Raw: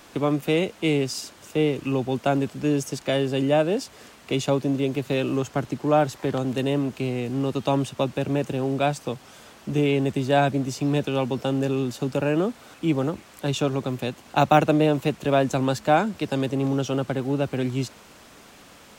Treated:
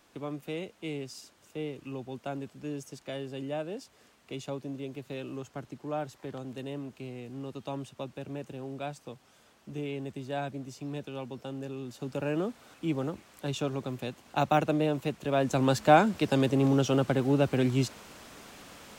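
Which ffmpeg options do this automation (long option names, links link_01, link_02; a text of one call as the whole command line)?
ffmpeg -i in.wav -af "volume=-0.5dB,afade=type=in:start_time=11.81:duration=0.49:silence=0.473151,afade=type=in:start_time=15.32:duration=0.47:silence=0.421697" out.wav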